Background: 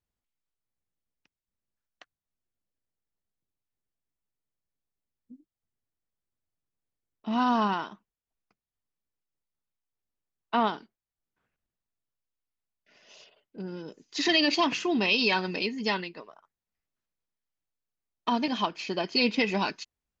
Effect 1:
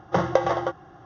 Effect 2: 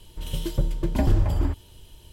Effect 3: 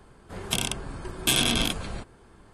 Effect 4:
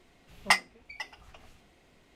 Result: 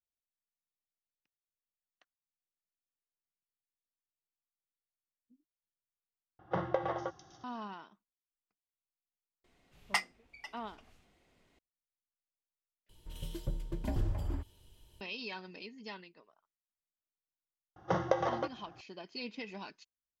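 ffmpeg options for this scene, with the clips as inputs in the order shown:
ffmpeg -i bed.wav -i cue0.wav -i cue1.wav -i cue2.wav -i cue3.wav -filter_complex "[1:a]asplit=2[link_01][link_02];[0:a]volume=-17.5dB[link_03];[link_01]acrossover=split=4400[link_04][link_05];[link_05]adelay=450[link_06];[link_04][link_06]amix=inputs=2:normalize=0[link_07];[link_03]asplit=3[link_08][link_09][link_10];[link_08]atrim=end=6.394[link_11];[link_07]atrim=end=1.05,asetpts=PTS-STARTPTS,volume=-11.5dB[link_12];[link_09]atrim=start=7.436:end=12.894[link_13];[2:a]atrim=end=2.12,asetpts=PTS-STARTPTS,volume=-13dB[link_14];[link_10]atrim=start=15.006[link_15];[4:a]atrim=end=2.15,asetpts=PTS-STARTPTS,volume=-8.5dB,afade=type=in:duration=0.004:curve=hsin,afade=type=out:start_time=2.146:duration=0.004:curve=hsin,adelay=9440[link_16];[link_02]atrim=end=1.05,asetpts=PTS-STARTPTS,volume=-9dB,afade=type=in:duration=0.004:curve=hsin,afade=type=out:start_time=1.046:duration=0.004:curve=hsin,adelay=17760[link_17];[link_11][link_12]acrossfade=duration=0.004:curve1=hsin:curve2=hsin[link_18];[link_18][link_13]acrossfade=duration=0.004:curve1=hsin:curve2=hsin[link_19];[link_19][link_14]acrossfade=duration=0.004:curve1=hsin:curve2=hsin[link_20];[link_20][link_15]acrossfade=duration=0.004:curve1=hsin:curve2=hsin[link_21];[link_21][link_16][link_17]amix=inputs=3:normalize=0" out.wav

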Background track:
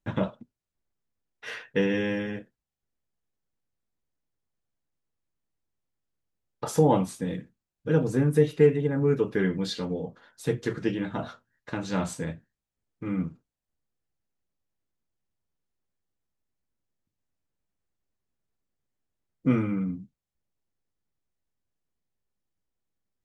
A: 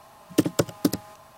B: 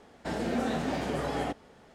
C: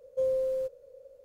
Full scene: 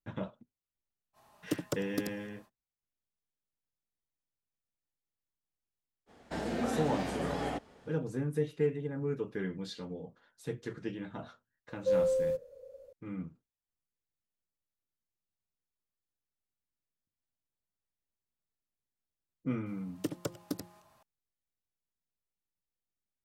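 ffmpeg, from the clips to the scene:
ffmpeg -i bed.wav -i cue0.wav -i cue1.wav -i cue2.wav -filter_complex "[1:a]asplit=2[link_01][link_02];[0:a]volume=-11dB[link_03];[link_02]bandreject=frequency=175.1:width_type=h:width=4,bandreject=frequency=350.2:width_type=h:width=4,bandreject=frequency=525.3:width_type=h:width=4,bandreject=frequency=700.4:width_type=h:width=4,bandreject=frequency=875.5:width_type=h:width=4,bandreject=frequency=1050.6:width_type=h:width=4,bandreject=frequency=1225.7:width_type=h:width=4[link_04];[link_01]atrim=end=1.37,asetpts=PTS-STARTPTS,volume=-13dB,afade=type=in:duration=0.05,afade=type=out:start_time=1.32:duration=0.05,adelay=1130[link_05];[2:a]atrim=end=1.94,asetpts=PTS-STARTPTS,volume=-3.5dB,afade=type=in:duration=0.05,afade=type=out:start_time=1.89:duration=0.05,adelay=6060[link_06];[3:a]atrim=end=1.24,asetpts=PTS-STARTPTS,afade=type=in:duration=0.004:curve=hsin,afade=type=out:start_time=1.236:duration=0.004:curve=hsin,adelay=11690[link_07];[link_04]atrim=end=1.37,asetpts=PTS-STARTPTS,volume=-14.5dB,afade=type=in:duration=0.004:curve=hsin,afade=type=out:start_time=1.366:duration=0.004:curve=hsin,adelay=19660[link_08];[link_03][link_05][link_06][link_07][link_08]amix=inputs=5:normalize=0" out.wav

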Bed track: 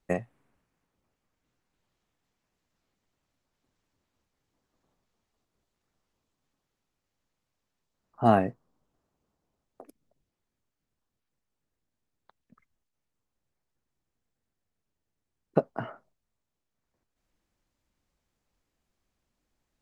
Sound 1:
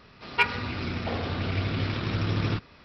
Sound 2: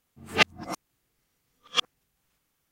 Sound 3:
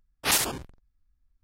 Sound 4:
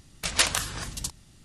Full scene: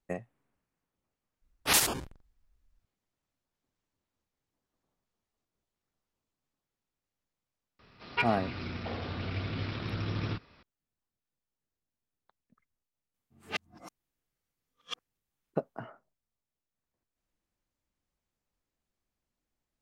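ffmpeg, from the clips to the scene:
ffmpeg -i bed.wav -i cue0.wav -i cue1.wav -i cue2.wav -filter_complex "[0:a]volume=-7.5dB[link_01];[3:a]atrim=end=1.43,asetpts=PTS-STARTPTS,volume=-1.5dB,afade=type=in:duration=0.004:curve=hsin,afade=type=out:start_time=1.426:duration=0.004:curve=hsin,adelay=1420[link_02];[1:a]atrim=end=2.84,asetpts=PTS-STARTPTS,volume=-7dB,afade=type=in:duration=0.004:curve=hsin,afade=type=out:start_time=2.836:duration=0.004:curve=hsin,adelay=7790[link_03];[2:a]atrim=end=2.71,asetpts=PTS-STARTPTS,volume=-15dB,afade=type=in:duration=0.004:curve=hsin,afade=type=out:start_time=2.706:duration=0.004:curve=hsin,adelay=13140[link_04];[link_01][link_02][link_03][link_04]amix=inputs=4:normalize=0" out.wav

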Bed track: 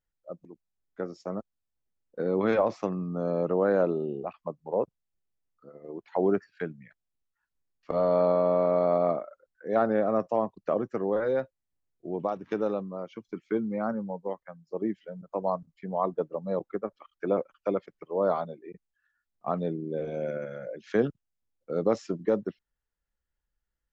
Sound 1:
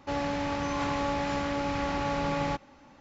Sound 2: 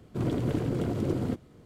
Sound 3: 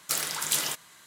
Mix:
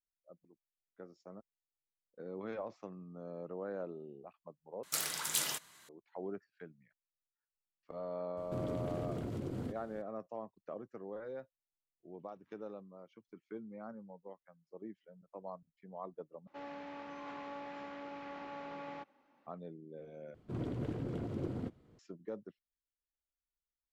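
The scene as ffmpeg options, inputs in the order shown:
ffmpeg -i bed.wav -i cue0.wav -i cue1.wav -i cue2.wav -filter_complex "[2:a]asplit=2[link_01][link_02];[0:a]volume=-17.5dB[link_03];[link_01]acompressor=threshold=-33dB:ratio=6:attack=3.2:release=140:knee=1:detection=peak[link_04];[1:a]acrossover=split=200 3600:gain=0.0708 1 0.2[link_05][link_06][link_07];[link_05][link_06][link_07]amix=inputs=3:normalize=0[link_08];[link_02]highshelf=frequency=6200:gain=-12[link_09];[link_03]asplit=4[link_10][link_11][link_12][link_13];[link_10]atrim=end=4.834[link_14];[3:a]atrim=end=1.06,asetpts=PTS-STARTPTS,volume=-7dB[link_15];[link_11]atrim=start=5.886:end=16.474[link_16];[link_08]atrim=end=3,asetpts=PTS-STARTPTS,volume=-15dB[link_17];[link_12]atrim=start=19.466:end=20.344[link_18];[link_09]atrim=end=1.65,asetpts=PTS-STARTPTS,volume=-10dB[link_19];[link_13]atrim=start=21.986[link_20];[link_04]atrim=end=1.65,asetpts=PTS-STARTPTS,volume=-3dB,afade=type=in:duration=0.004:curve=hsin,afade=type=out:start_time=1.646:duration=0.004:curve=hsin,adelay=8370[link_21];[link_14][link_15]acrossfade=duration=0.004:curve1=hsin:curve2=hsin[link_22];[link_22][link_16]acrossfade=duration=0.004:curve1=hsin:curve2=hsin[link_23];[link_23][link_17]acrossfade=duration=0.004:curve1=hsin:curve2=hsin[link_24];[link_24][link_18]acrossfade=duration=0.004:curve1=hsin:curve2=hsin[link_25];[link_25][link_19]acrossfade=duration=0.004:curve1=hsin:curve2=hsin[link_26];[link_26][link_20]acrossfade=duration=0.004:curve1=hsin:curve2=hsin[link_27];[link_27][link_21]amix=inputs=2:normalize=0" out.wav

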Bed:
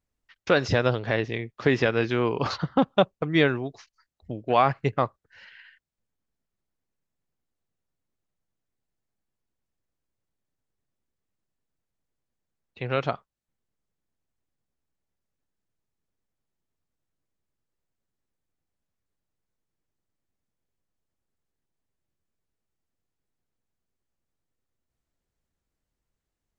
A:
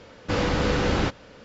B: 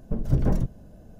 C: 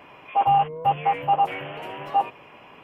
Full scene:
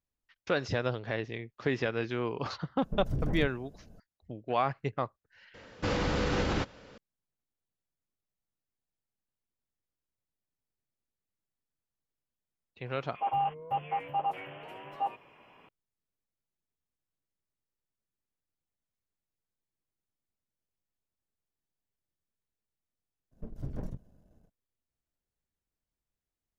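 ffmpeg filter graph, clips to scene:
ffmpeg -i bed.wav -i cue0.wav -i cue1.wav -i cue2.wav -filter_complex "[2:a]asplit=2[link_01][link_02];[0:a]volume=-8.5dB[link_03];[link_01]alimiter=limit=-17dB:level=0:latency=1:release=32[link_04];[1:a]alimiter=limit=-15dB:level=0:latency=1:release=51[link_05];[link_02]aeval=exprs='if(lt(val(0),0),0.447*val(0),val(0))':channel_layout=same[link_06];[link_04]atrim=end=1.19,asetpts=PTS-STARTPTS,volume=-7dB,afade=type=in:duration=0.004:curve=hsin,afade=type=out:start_time=1.186:duration=0.004:curve=hsin,adelay=2810[link_07];[link_05]atrim=end=1.44,asetpts=PTS-STARTPTS,volume=-5dB,afade=type=in:duration=0.004:curve=hsin,afade=type=out:start_time=1.436:duration=0.004:curve=hsin,adelay=5540[link_08];[3:a]atrim=end=2.83,asetpts=PTS-STARTPTS,volume=-11dB,afade=type=in:duration=0.004:curve=hsin,afade=type=out:start_time=2.826:duration=0.004:curve=hsin,adelay=12860[link_09];[link_06]atrim=end=1.19,asetpts=PTS-STARTPTS,volume=-13.5dB,afade=type=in:duration=0.02,afade=type=out:start_time=1.17:duration=0.02,adelay=23310[link_10];[link_03][link_07][link_08][link_09][link_10]amix=inputs=5:normalize=0" out.wav

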